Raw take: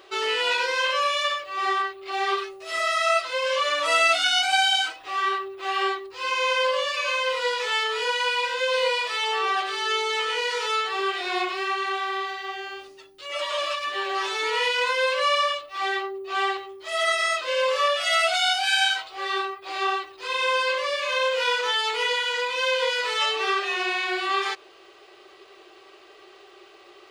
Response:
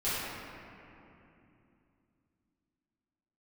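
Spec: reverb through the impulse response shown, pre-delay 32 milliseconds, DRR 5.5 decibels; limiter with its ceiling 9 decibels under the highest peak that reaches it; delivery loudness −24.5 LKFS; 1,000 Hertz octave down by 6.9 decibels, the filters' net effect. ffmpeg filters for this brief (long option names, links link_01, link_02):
-filter_complex "[0:a]equalizer=frequency=1000:width_type=o:gain=-9,alimiter=limit=-20.5dB:level=0:latency=1,asplit=2[link_01][link_02];[1:a]atrim=start_sample=2205,adelay=32[link_03];[link_02][link_03]afir=irnorm=-1:irlink=0,volume=-15dB[link_04];[link_01][link_04]amix=inputs=2:normalize=0,volume=3dB"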